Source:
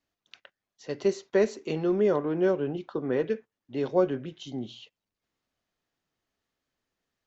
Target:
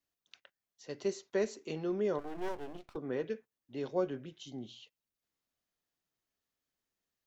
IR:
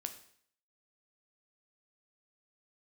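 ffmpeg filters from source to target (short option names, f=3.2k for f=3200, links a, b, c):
-filter_complex "[0:a]asplit=3[a][b][c];[a]afade=t=out:st=2.18:d=0.02[d];[b]aeval=exprs='max(val(0),0)':c=same,afade=t=in:st=2.18:d=0.02,afade=t=out:st=2.95:d=0.02[e];[c]afade=t=in:st=2.95:d=0.02[f];[d][e][f]amix=inputs=3:normalize=0,crystalizer=i=1.5:c=0,volume=-9dB"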